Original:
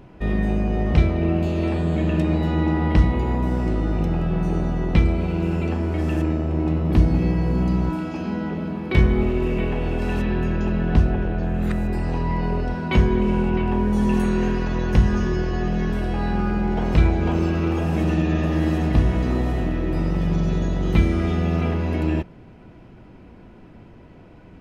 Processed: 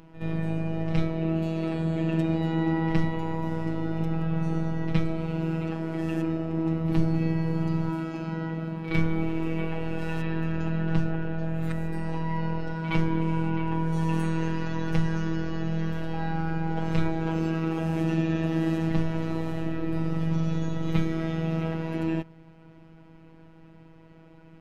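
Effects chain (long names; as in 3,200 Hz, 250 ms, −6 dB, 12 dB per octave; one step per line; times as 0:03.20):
echo ahead of the sound 68 ms −13.5 dB
phases set to zero 162 Hz
level −3.5 dB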